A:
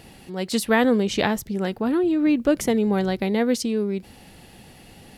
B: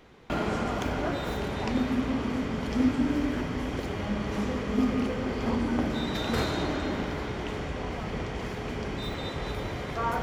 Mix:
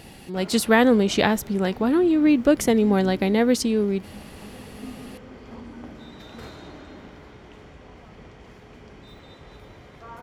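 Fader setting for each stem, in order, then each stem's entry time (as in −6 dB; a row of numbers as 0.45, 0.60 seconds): +2.0, −12.5 decibels; 0.00, 0.05 seconds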